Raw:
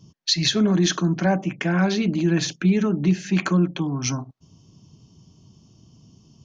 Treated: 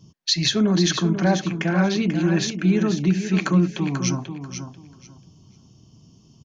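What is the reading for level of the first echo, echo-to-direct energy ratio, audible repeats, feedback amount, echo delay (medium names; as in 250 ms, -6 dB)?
-8.5 dB, -8.5 dB, 2, 20%, 489 ms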